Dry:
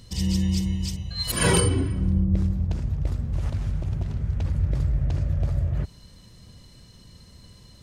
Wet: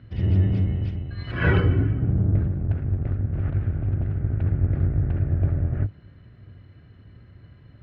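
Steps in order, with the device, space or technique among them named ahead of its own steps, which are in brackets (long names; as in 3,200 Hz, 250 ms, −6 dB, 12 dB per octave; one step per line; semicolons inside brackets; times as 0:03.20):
0:01.83–0:02.64: comb filter 7 ms, depth 53%
sub-octave bass pedal (sub-octave generator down 1 octave, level +1 dB; loudspeaker in its box 76–2,300 Hz, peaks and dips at 100 Hz +8 dB, 200 Hz −6 dB, 490 Hz −5 dB, 970 Hz −8 dB, 1,500 Hz +6 dB)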